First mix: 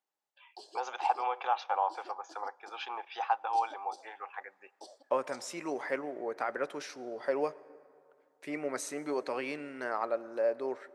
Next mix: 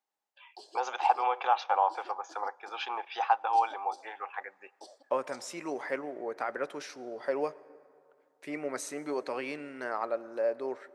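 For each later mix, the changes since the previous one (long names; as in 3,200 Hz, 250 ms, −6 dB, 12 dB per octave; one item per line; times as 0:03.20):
first voice +4.0 dB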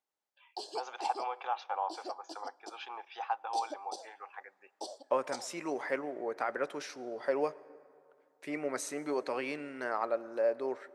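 first voice −8.5 dB
background +8.5 dB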